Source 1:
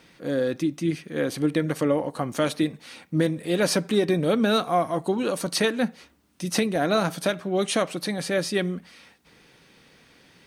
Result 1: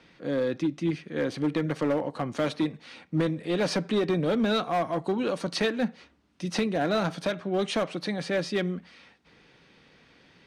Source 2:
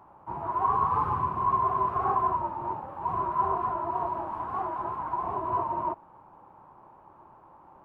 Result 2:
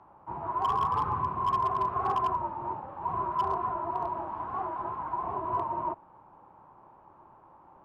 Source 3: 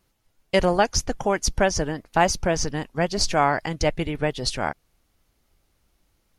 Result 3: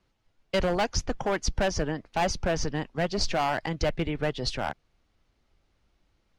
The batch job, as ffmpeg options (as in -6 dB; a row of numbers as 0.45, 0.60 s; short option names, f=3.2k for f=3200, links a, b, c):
-filter_complex "[0:a]lowpass=4.7k,acrossover=split=160|3100[a][b][c];[b]asoftclip=type=hard:threshold=-19.5dB[d];[a][d][c]amix=inputs=3:normalize=0,volume=-2dB"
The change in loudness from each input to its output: -3.5, -2.0, -5.5 LU